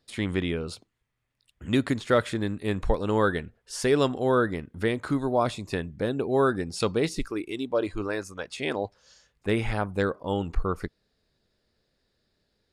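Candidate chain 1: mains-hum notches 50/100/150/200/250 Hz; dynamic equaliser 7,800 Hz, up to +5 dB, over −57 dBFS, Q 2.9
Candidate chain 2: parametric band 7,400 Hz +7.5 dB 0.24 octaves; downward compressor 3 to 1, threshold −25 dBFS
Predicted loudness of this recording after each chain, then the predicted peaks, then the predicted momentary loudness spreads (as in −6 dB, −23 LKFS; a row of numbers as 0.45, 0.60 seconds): −28.0, −31.5 LKFS; −9.5, −13.0 dBFS; 9, 6 LU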